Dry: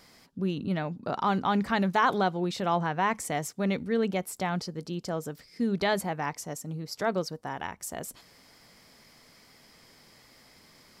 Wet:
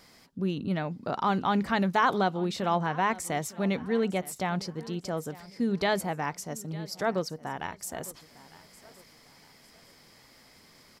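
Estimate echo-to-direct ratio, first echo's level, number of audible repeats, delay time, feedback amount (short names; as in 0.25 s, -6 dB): -19.0 dB, -19.5 dB, 2, 0.905 s, 37%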